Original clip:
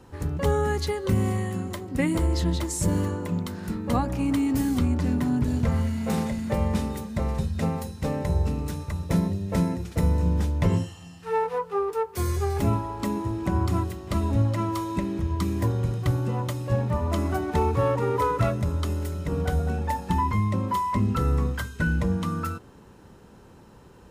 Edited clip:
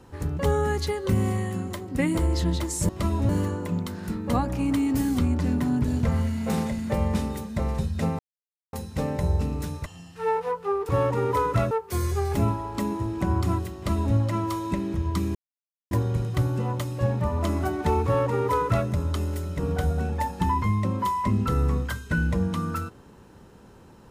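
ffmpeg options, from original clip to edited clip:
-filter_complex "[0:a]asplit=8[s0][s1][s2][s3][s4][s5][s6][s7];[s0]atrim=end=2.892[s8];[s1]atrim=start=13.998:end=14.402[s9];[s2]atrim=start=2.888:end=7.79,asetpts=PTS-STARTPTS,afade=t=out:st=4.898:d=0.004:c=hsin,apad=pad_dur=0.54[s10];[s3]atrim=start=7.79:end=8.922,asetpts=PTS-STARTPTS,afade=t=in:d=0.004:c=hsin[s11];[s4]atrim=start=10.928:end=11.962[s12];[s5]atrim=start=17.738:end=18.562[s13];[s6]atrim=start=11.958:end=15.6,asetpts=PTS-STARTPTS,afade=t=out:st=3.638:d=0.004:c=hsin,apad=pad_dur=0.56[s14];[s7]atrim=start=15.6,asetpts=PTS-STARTPTS,afade=t=in:d=0.004:c=hsin[s15];[s8][s9]acrossfade=d=0.004:c1=hsin:c2=hsin[s16];[s10][s11]concat=n=2:v=0:a=1[s17];[s16][s17]acrossfade=d=0.004:c1=hsin:c2=hsin[s18];[s18][s12]acrossfade=d=0.004:c1=hsin:c2=hsin[s19];[s19][s13]acrossfade=d=0.004:c1=hsin:c2=hsin[s20];[s14][s15]concat=n=2:v=0:a=1[s21];[s20][s21]acrossfade=d=0.004:c1=hsin:c2=hsin"

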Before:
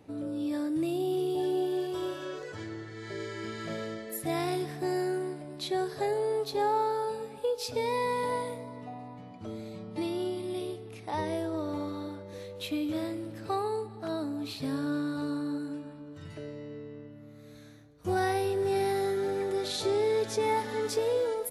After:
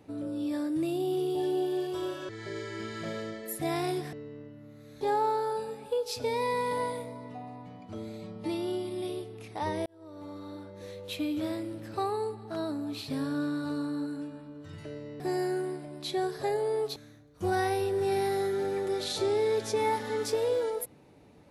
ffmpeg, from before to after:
-filter_complex "[0:a]asplit=7[s0][s1][s2][s3][s4][s5][s6];[s0]atrim=end=2.292[s7];[s1]atrim=start=2.928:end=4.772[s8];[s2]atrim=start=16.718:end=17.602[s9];[s3]atrim=start=6.528:end=11.38,asetpts=PTS-STARTPTS,afade=t=out:st=4.848:d=0.004:c=hsin[s10];[s4]atrim=start=11.38:end=16.722,asetpts=PTS-STARTPTS,afade=t=in:d=1.11[s11];[s5]atrim=start=4.768:end=6.532[s12];[s6]atrim=start=17.598[s13];[s7][s8]acrossfade=d=0.004:c1=hsin:c2=hsin[s14];[s14][s9]acrossfade=d=0.004:c1=hsin:c2=hsin[s15];[s10][s11]concat=n=2:v=0:a=1[s16];[s15][s16]acrossfade=d=0.004:c1=hsin:c2=hsin[s17];[s17][s12]acrossfade=d=0.004:c1=hsin:c2=hsin[s18];[s18][s13]acrossfade=d=0.004:c1=hsin:c2=hsin"

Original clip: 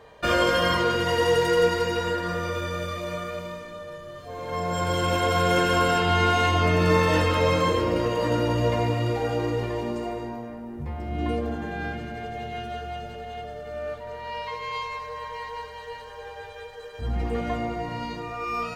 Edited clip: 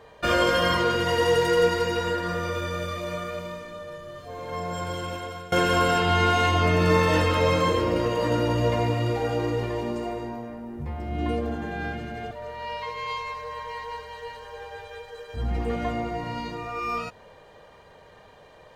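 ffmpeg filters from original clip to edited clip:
-filter_complex "[0:a]asplit=3[s0][s1][s2];[s0]atrim=end=5.52,asetpts=PTS-STARTPTS,afade=t=out:st=4.18:d=1.34:silence=0.0749894[s3];[s1]atrim=start=5.52:end=12.312,asetpts=PTS-STARTPTS,afade=t=in:d=0.004:c=hsin:silence=0.0749894[s4];[s2]atrim=start=13.958[s5];[s3][s4]concat=n=2:v=0:a=1[s6];[s6][s5]acrossfade=d=0.004:c1=hsin:c2=hsin"

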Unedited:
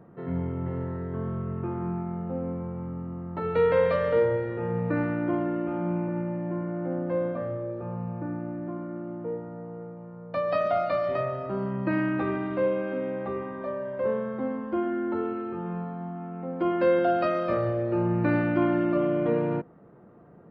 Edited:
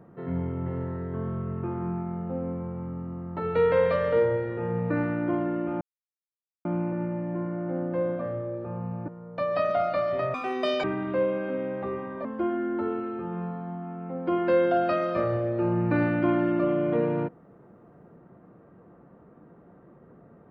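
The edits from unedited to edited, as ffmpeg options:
-filter_complex "[0:a]asplit=6[s0][s1][s2][s3][s4][s5];[s0]atrim=end=5.81,asetpts=PTS-STARTPTS,afade=t=out:st=5.806:d=0.004:c=hsin,apad=pad_dur=0.84[s6];[s1]atrim=start=5.81:end=8.242,asetpts=PTS-STARTPTS,afade=t=in:d=0.004:c=hsin[s7];[s2]atrim=start=10.038:end=11.304[s8];[s3]atrim=start=11.3:end=12.27,asetpts=PTS-STARTPTS,asetrate=85995,aresample=44100[s9];[s4]atrim=start=12.266:end=13.682[s10];[s5]atrim=start=14.578[s11];[s6][s7]concat=n=2:v=0:a=1[s12];[s12][s8]acrossfade=d=0.004:c1=hsin:c2=hsin[s13];[s13][s9]acrossfade=d=0.004:c1=hsin:c2=hsin[s14];[s14][s10]acrossfade=d=0.004:c1=hsin:c2=hsin[s15];[s15][s11]acrossfade=d=0.004:c1=hsin:c2=hsin"

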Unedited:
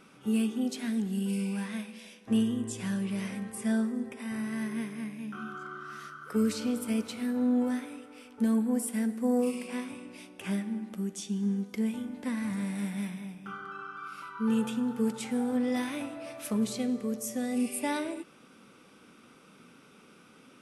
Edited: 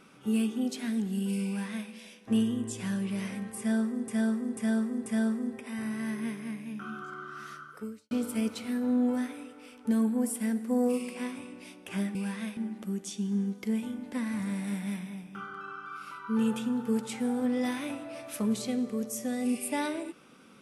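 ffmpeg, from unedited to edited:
-filter_complex "[0:a]asplit=7[s0][s1][s2][s3][s4][s5][s6];[s0]atrim=end=4.082[s7];[s1]atrim=start=3.588:end=4.082[s8];[s2]atrim=start=3.588:end=4.082[s9];[s3]atrim=start=3.588:end=6.64,asetpts=PTS-STARTPTS,afade=t=out:st=2.562:d=0.49:c=qua[s10];[s4]atrim=start=6.64:end=10.682,asetpts=PTS-STARTPTS,afade=t=in:d=0.004:c=hsin[s11];[s5]atrim=start=1.468:end=1.892[s12];[s6]atrim=start=10.678[s13];[s7][s8]acrossfade=d=0.004:c1=hsin:c2=hsin[s14];[s14][s9]acrossfade=d=0.004:c1=hsin:c2=hsin[s15];[s10][s11]concat=n=2:v=0:a=1[s16];[s15][s16]acrossfade=d=0.004:c1=hsin:c2=hsin[s17];[s17][s12]acrossfade=d=0.004:c1=hsin:c2=hsin[s18];[s18][s13]acrossfade=d=0.004:c1=hsin:c2=hsin"

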